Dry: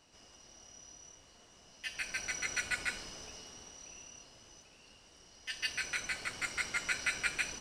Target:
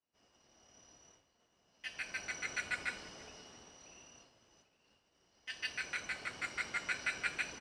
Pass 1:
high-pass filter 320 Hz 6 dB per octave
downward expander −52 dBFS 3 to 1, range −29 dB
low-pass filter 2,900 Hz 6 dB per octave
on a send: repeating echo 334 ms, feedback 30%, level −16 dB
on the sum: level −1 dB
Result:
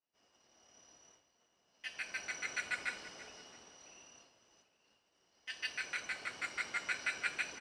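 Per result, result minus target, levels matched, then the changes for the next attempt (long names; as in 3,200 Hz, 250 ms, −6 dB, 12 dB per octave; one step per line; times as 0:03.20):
125 Hz band −6.5 dB; echo-to-direct +6.5 dB
change: high-pass filter 100 Hz 6 dB per octave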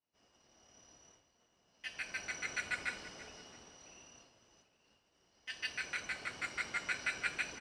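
echo-to-direct +6.5 dB
change: repeating echo 334 ms, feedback 30%, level −22.5 dB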